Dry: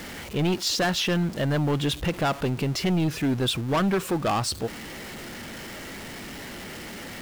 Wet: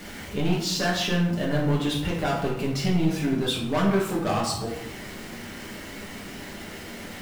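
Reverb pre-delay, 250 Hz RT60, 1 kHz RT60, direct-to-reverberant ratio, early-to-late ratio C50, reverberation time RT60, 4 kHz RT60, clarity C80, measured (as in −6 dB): 5 ms, 1.1 s, 0.80 s, −5.0 dB, 4.0 dB, 0.80 s, 0.50 s, 7.0 dB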